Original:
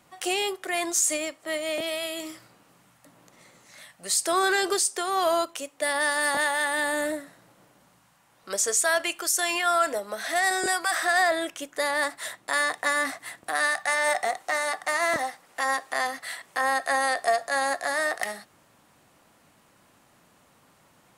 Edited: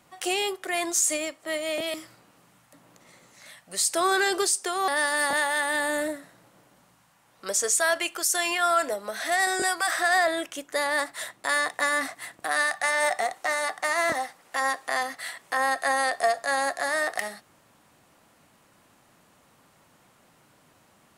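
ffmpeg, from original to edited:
-filter_complex "[0:a]asplit=3[a][b][c];[a]atrim=end=1.942[d];[b]atrim=start=2.258:end=5.202[e];[c]atrim=start=5.918[f];[d][e]acrossfade=d=0.004:c1=hsin:c2=hsin[g];[g][f]acrossfade=d=0.004:c1=hsin:c2=hsin"

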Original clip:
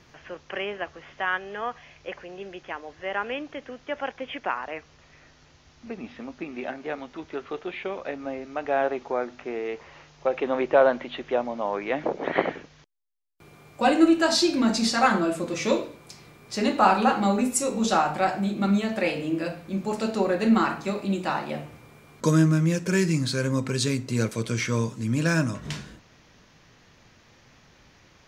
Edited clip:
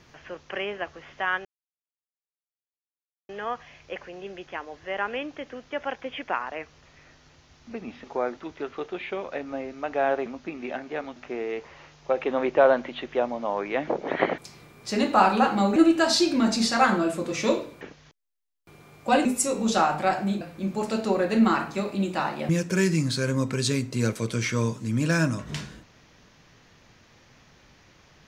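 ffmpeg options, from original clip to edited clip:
-filter_complex "[0:a]asplit=12[a][b][c][d][e][f][g][h][i][j][k][l];[a]atrim=end=1.45,asetpts=PTS-STARTPTS,afade=t=out:st=1.446:d=0.004:c=hsin,apad=pad_dur=1.84[m];[b]atrim=start=1.45:end=6.202,asetpts=PTS-STARTPTS,afade=t=in:d=0.004:c=hsin[n];[c]atrim=start=8.988:end=9.322[o];[d]atrim=start=7.098:end=8.992[p];[e]atrim=start=6.198:end=7.102[q];[f]atrim=start=9.318:end=12.542[r];[g]atrim=start=16.028:end=17.412[s];[h]atrim=start=13.978:end=16.032[t];[i]atrim=start=12.538:end=13.982[u];[j]atrim=start=17.408:end=18.572[v];[k]atrim=start=19.508:end=21.592[w];[l]atrim=start=22.648[x];[m][n]concat=n=2:v=0:a=1[y];[y][o]acrossfade=d=0.004:c1=hsin:c2=hsin[z];[z][p]acrossfade=d=0.004:c1=hsin:c2=hsin[aa];[aa][q]acrossfade=d=0.004:c1=hsin:c2=hsin[ab];[ab][r]acrossfade=d=0.004:c1=hsin:c2=hsin[ac];[ac][s]acrossfade=d=0.004:c1=hsin:c2=hsin[ad];[ad][t]acrossfade=d=0.004:c1=hsin:c2=hsin[ae];[ae][u]acrossfade=d=0.004:c1=hsin:c2=hsin[af];[af][v]acrossfade=d=0.004:c1=hsin:c2=hsin[ag];[ag][w]acrossfade=d=0.004:c1=hsin:c2=hsin[ah];[ah][x]acrossfade=d=0.004:c1=hsin:c2=hsin"

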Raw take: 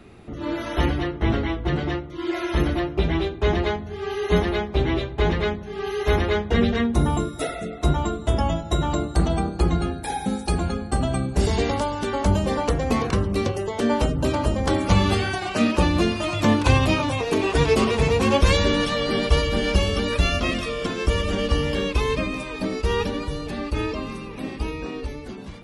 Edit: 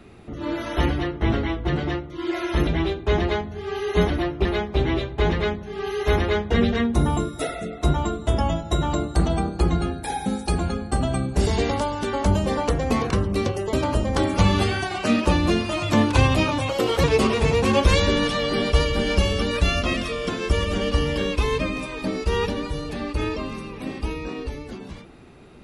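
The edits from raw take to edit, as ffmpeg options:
-filter_complex "[0:a]asplit=7[a][b][c][d][e][f][g];[a]atrim=end=2.672[h];[b]atrim=start=3.018:end=4.452[i];[c]atrim=start=2.668:end=3.022[j];[d]atrim=start=4.448:end=13.732[k];[e]atrim=start=14.238:end=17.204[l];[f]atrim=start=17.2:end=17.61,asetpts=PTS-STARTPTS,asetrate=52038,aresample=44100[m];[g]atrim=start=17.606[n];[h][i]acrossfade=d=0.004:c1=hsin:c2=hsin[o];[o][j]acrossfade=d=0.004:c1=hsin:c2=hsin[p];[p][k]acrossfade=d=0.004:c1=hsin:c2=hsin[q];[q][l]acrossfade=d=0.004:c1=hsin:c2=hsin[r];[r][m]acrossfade=d=0.004:c1=hsin:c2=hsin[s];[s][n]acrossfade=d=0.004:c1=hsin:c2=hsin"

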